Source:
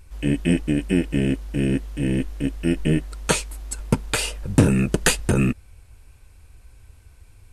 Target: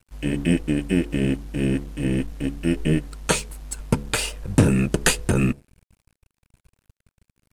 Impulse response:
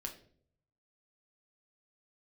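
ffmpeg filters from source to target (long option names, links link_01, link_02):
-af "bandreject=frequency=70.54:width_type=h:width=4,bandreject=frequency=141.08:width_type=h:width=4,bandreject=frequency=211.62:width_type=h:width=4,bandreject=frequency=282.16:width_type=h:width=4,bandreject=frequency=352.7:width_type=h:width=4,bandreject=frequency=423.24:width_type=h:width=4,bandreject=frequency=493.78:width_type=h:width=4,aeval=exprs='sgn(val(0))*max(abs(val(0))-0.00708,0)':channel_layout=same"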